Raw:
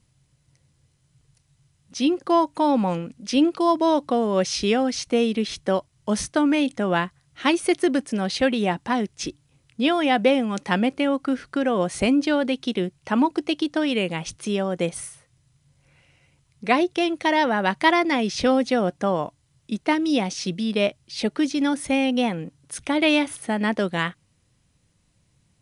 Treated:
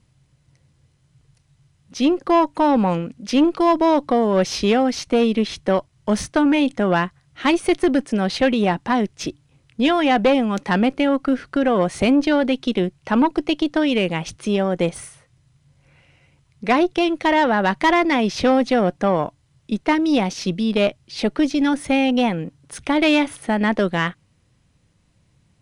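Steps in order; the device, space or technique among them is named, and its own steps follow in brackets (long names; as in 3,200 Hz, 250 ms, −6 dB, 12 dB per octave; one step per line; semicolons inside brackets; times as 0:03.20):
tube preamp driven hard (tube saturation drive 15 dB, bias 0.4; high-shelf EQ 5,300 Hz −9 dB)
level +6 dB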